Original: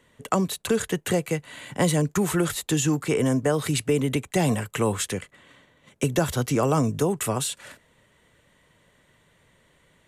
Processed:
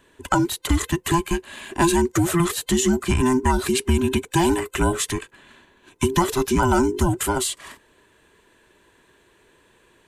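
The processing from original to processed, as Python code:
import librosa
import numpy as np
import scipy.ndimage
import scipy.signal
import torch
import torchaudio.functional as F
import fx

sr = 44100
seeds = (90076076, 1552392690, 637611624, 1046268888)

y = fx.band_invert(x, sr, width_hz=500)
y = F.gain(torch.from_numpy(y), 3.5).numpy()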